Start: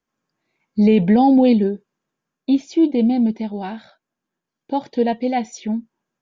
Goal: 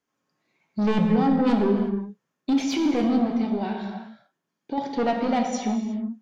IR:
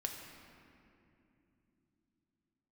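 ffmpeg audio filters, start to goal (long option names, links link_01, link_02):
-filter_complex "[0:a]highpass=frequency=130:poles=1,asplit=3[link_01][link_02][link_03];[link_01]afade=type=out:start_time=1.05:duration=0.02[link_04];[link_02]agate=range=-33dB:threshold=-7dB:ratio=3:detection=peak,afade=type=in:start_time=1.05:duration=0.02,afade=type=out:start_time=1.46:duration=0.02[link_05];[link_03]afade=type=in:start_time=1.46:duration=0.02[link_06];[link_04][link_05][link_06]amix=inputs=3:normalize=0,asettb=1/sr,asplit=3[link_07][link_08][link_09];[link_07]atrim=end=3.624[link_10];[link_08]atrim=start=3.62:end=4.78,asetpts=PTS-STARTPTS,afade=type=in:duration=0.004:curve=qsin,afade=type=out:start_time=1.156:duration=0.004:curve=qsin,acompressor=threshold=-28dB:ratio=6[link_11];[link_09]atrim=start=4.776[link_12];[link_10][link_11]acrossfade=duration=0.004:curve1=hsin:curve2=qsin[link_13];[link_13][link_12]acrossfade=duration=0.004:curve1=qsin:curve2=hsin,asoftclip=type=tanh:threshold=-18.5dB,asettb=1/sr,asplit=3[link_14][link_15][link_16];[link_14]atrim=end=2.534[link_17];[link_15]atrim=start=2.53:end=3.04,asetpts=PTS-STARTPTS,afade=type=in:duration=0.004:curve=qsin,afade=type=out:start_time=0.506:duration=0.004:curve=qsin,asplit=2[link_18][link_19];[link_19]highpass=frequency=720:poles=1,volume=22dB,asoftclip=type=tanh:threshold=-18.5dB[link_20];[link_18][link_20]amix=inputs=2:normalize=0,lowpass=frequency=2400:poles=1,volume=-6dB[link_21];[link_16]atrim=start=3.036[link_22];[link_17][link_21]acrossfade=duration=0.004:curve1=hsin:curve2=qsin[link_23];[link_23][link_22]acrossfade=duration=0.004:curve1=qsin:curve2=hsin[link_24];[1:a]atrim=start_sample=2205,afade=type=out:start_time=0.29:duration=0.01,atrim=end_sample=13230,asetrate=28665,aresample=44100[link_25];[link_24][link_25]afir=irnorm=-1:irlink=0"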